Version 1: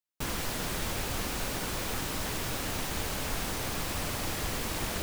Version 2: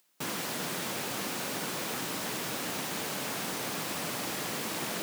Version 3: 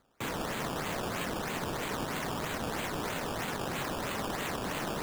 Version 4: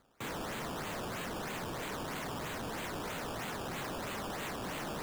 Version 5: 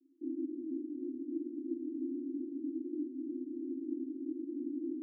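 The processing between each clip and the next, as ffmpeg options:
-af "highpass=f=150:w=0.5412,highpass=f=150:w=1.3066,acompressor=mode=upward:threshold=-53dB:ratio=2.5"
-af "afreqshift=-28,acrusher=samples=15:mix=1:aa=0.000001:lfo=1:lforange=15:lforate=3.1"
-af "asoftclip=type=tanh:threshold=-37.5dB,volume=1dB"
-af "asuperpass=centerf=300:order=12:qfactor=3,volume=11dB"

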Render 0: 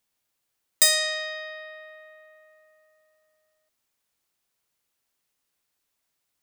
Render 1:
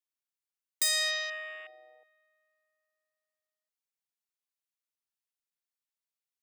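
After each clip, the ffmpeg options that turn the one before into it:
-af "afwtdn=0.0126,highpass=f=1.3k:p=1,alimiter=limit=-15.5dB:level=0:latency=1:release=247"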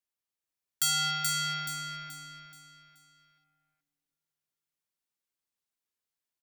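-af "afreqshift=-470,aecho=1:1:428|856|1284|1712|2140:0.668|0.254|0.0965|0.0367|0.0139"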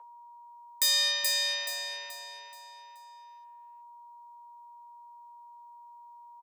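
-filter_complex "[0:a]aeval=exprs='val(0)+0.00398*sin(2*PI*530*n/s)':c=same,afreqshift=420,asplit=2[a][b];[b]adelay=13,volume=-5.5dB[c];[a][c]amix=inputs=2:normalize=0,volume=1.5dB"

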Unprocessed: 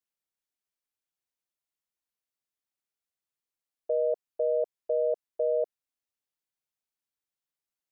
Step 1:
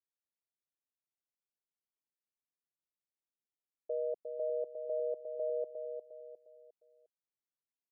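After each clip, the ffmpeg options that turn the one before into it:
-filter_complex "[0:a]bandpass=f=290:t=q:w=0.62:csg=0,asplit=2[a][b];[b]aecho=0:1:355|710|1065|1420:0.473|0.175|0.0648|0.024[c];[a][c]amix=inputs=2:normalize=0,volume=-6.5dB"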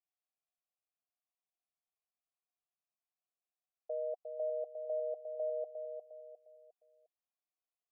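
-filter_complex "[0:a]asplit=3[a][b][c];[a]bandpass=f=730:t=q:w=8,volume=0dB[d];[b]bandpass=f=1.09k:t=q:w=8,volume=-6dB[e];[c]bandpass=f=2.44k:t=q:w=8,volume=-9dB[f];[d][e][f]amix=inputs=3:normalize=0,volume=8dB"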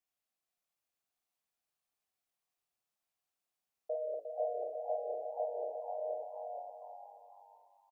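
-filter_complex "[0:a]asplit=2[a][b];[b]aecho=0:1:51|494|586:0.531|0.211|0.398[c];[a][c]amix=inputs=2:normalize=0,flanger=delay=9:depth=10:regen=-65:speed=2:shape=sinusoidal,asplit=2[d][e];[e]asplit=4[f][g][h][i];[f]adelay=480,afreqshift=97,volume=-6.5dB[j];[g]adelay=960,afreqshift=194,volume=-16.7dB[k];[h]adelay=1440,afreqshift=291,volume=-26.8dB[l];[i]adelay=1920,afreqshift=388,volume=-37dB[m];[j][k][l][m]amix=inputs=4:normalize=0[n];[d][n]amix=inputs=2:normalize=0,volume=7dB"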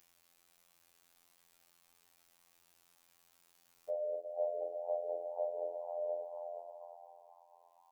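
-af "bandreject=f=670:w=12,acompressor=mode=upward:threshold=-55dB:ratio=2.5,afftfilt=real='hypot(re,im)*cos(PI*b)':imag='0':win_size=2048:overlap=0.75,volume=5dB"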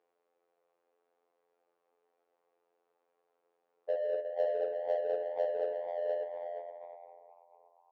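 -af "highpass=f=460:t=q:w=4.9,bandreject=f=60:t=h:w=6,bandreject=f=120:t=h:w=6,bandreject=f=180:t=h:w=6,bandreject=f=240:t=h:w=6,bandreject=f=300:t=h:w=6,bandreject=f=360:t=h:w=6,bandreject=f=420:t=h:w=6,bandreject=f=480:t=h:w=6,bandreject=f=540:t=h:w=6,bandreject=f=600:t=h:w=6,adynamicsmooth=sensitivity=5.5:basefreq=1k"

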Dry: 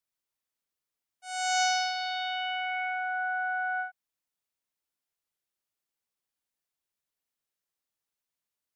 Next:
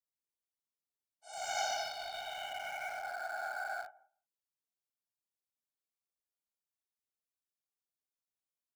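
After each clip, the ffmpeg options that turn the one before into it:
-filter_complex "[0:a]asplit=2[a][b];[b]adelay=173,lowpass=f=1.2k:p=1,volume=-19dB,asplit=2[c][d];[d]adelay=173,lowpass=f=1.2k:p=1,volume=0.15[e];[a][c][e]amix=inputs=3:normalize=0,afftfilt=real='hypot(re,im)*cos(2*PI*random(0))':imag='hypot(re,im)*sin(2*PI*random(1))':win_size=512:overlap=0.75,acrossover=split=1400|2800|4200[f][g][h][i];[g]aeval=exprs='val(0)*gte(abs(val(0)),0.00596)':c=same[j];[f][j][h][i]amix=inputs=4:normalize=0,volume=-3.5dB"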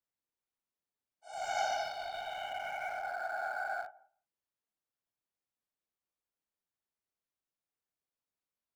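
-af "highshelf=f=2.8k:g=-11,volume=4dB"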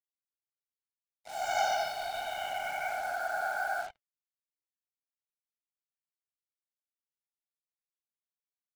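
-af "acrusher=bits=7:mix=0:aa=0.5,flanger=delay=3.1:depth=3.8:regen=-74:speed=1.3:shape=sinusoidal,volume=8.5dB"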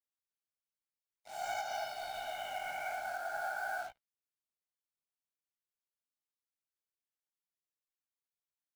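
-af "flanger=delay=15:depth=7.8:speed=0.51,alimiter=level_in=2dB:limit=-24dB:level=0:latency=1:release=254,volume=-2dB,acrusher=bits=5:mode=log:mix=0:aa=0.000001,volume=-2dB"

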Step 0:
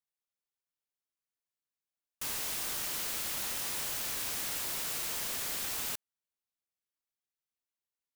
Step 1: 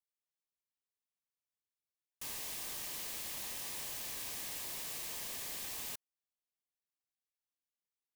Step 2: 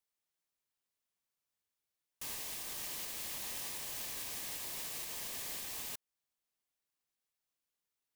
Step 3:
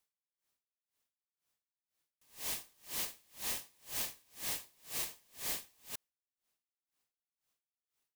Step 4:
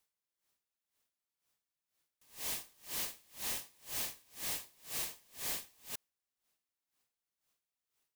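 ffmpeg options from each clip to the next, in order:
-af "bandreject=f=1.4k:w=5.1,volume=-6.5dB"
-af "alimiter=level_in=12dB:limit=-24dB:level=0:latency=1:release=284,volume=-12dB,volume=4.5dB"
-af "aeval=exprs='val(0)*pow(10,-35*(0.5-0.5*cos(2*PI*2*n/s))/20)':c=same,volume=6.5dB"
-af "asoftclip=type=tanh:threshold=-34dB,volume=2.5dB"

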